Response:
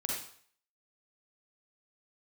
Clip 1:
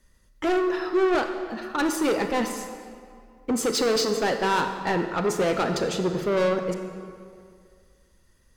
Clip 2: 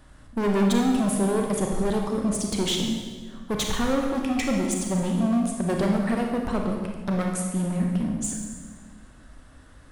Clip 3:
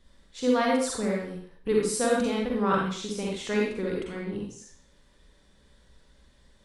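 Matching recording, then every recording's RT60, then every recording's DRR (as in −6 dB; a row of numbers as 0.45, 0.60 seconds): 3; 2.2, 1.5, 0.55 seconds; 6.0, 1.0, −3.0 decibels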